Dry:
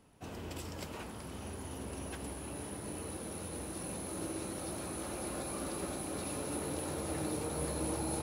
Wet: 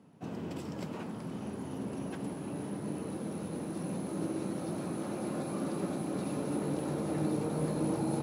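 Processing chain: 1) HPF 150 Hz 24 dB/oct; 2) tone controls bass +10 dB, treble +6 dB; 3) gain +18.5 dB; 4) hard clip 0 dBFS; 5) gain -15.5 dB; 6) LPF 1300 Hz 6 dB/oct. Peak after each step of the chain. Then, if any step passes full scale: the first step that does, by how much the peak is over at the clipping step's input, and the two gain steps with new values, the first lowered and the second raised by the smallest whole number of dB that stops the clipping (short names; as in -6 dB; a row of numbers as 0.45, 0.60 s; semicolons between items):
-25.5, -20.5, -2.0, -2.0, -17.5, -20.0 dBFS; no overload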